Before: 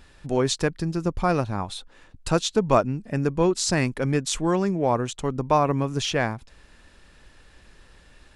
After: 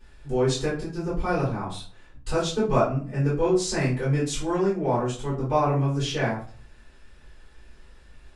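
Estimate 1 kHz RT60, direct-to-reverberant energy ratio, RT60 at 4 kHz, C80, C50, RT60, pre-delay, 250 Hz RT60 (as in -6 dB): 0.40 s, -9.5 dB, 0.30 s, 11.5 dB, 5.5 dB, 0.45 s, 3 ms, 0.50 s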